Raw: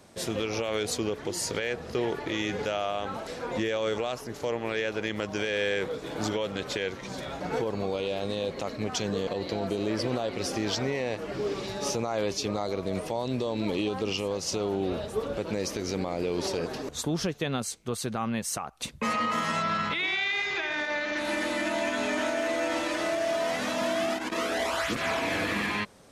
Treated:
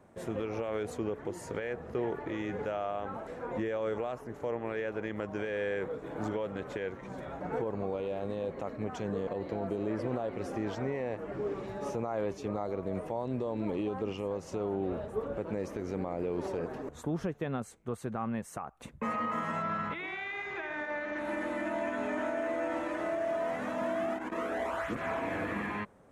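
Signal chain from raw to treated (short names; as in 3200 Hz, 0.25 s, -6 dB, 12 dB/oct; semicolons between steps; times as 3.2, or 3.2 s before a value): EQ curve 950 Hz 0 dB, 1800 Hz -3 dB, 4800 Hz -21 dB, 7200 Hz -13 dB; gain -4 dB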